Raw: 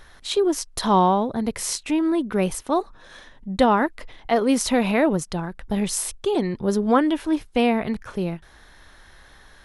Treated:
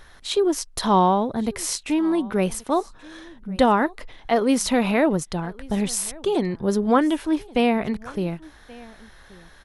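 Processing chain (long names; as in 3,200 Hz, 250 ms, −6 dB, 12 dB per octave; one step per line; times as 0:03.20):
single-tap delay 1,129 ms −23 dB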